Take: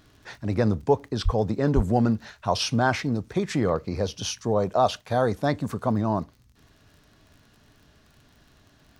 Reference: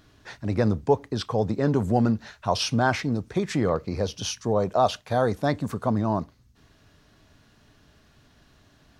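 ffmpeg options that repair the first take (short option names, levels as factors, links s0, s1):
-filter_complex "[0:a]adeclick=t=4,asplit=3[s0][s1][s2];[s0]afade=t=out:st=1.24:d=0.02[s3];[s1]highpass=f=140:w=0.5412,highpass=f=140:w=1.3066,afade=t=in:st=1.24:d=0.02,afade=t=out:st=1.36:d=0.02[s4];[s2]afade=t=in:st=1.36:d=0.02[s5];[s3][s4][s5]amix=inputs=3:normalize=0,asplit=3[s6][s7][s8];[s6]afade=t=out:st=1.75:d=0.02[s9];[s7]highpass=f=140:w=0.5412,highpass=f=140:w=1.3066,afade=t=in:st=1.75:d=0.02,afade=t=out:st=1.87:d=0.02[s10];[s8]afade=t=in:st=1.87:d=0.02[s11];[s9][s10][s11]amix=inputs=3:normalize=0"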